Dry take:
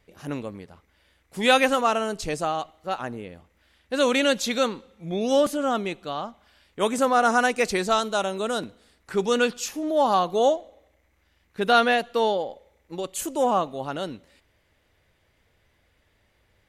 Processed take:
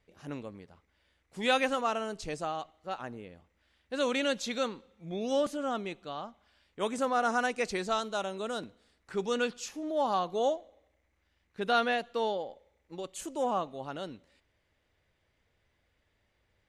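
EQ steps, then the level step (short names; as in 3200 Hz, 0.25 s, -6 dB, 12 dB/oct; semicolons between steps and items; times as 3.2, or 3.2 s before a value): LPF 8500 Hz 12 dB/oct; -8.5 dB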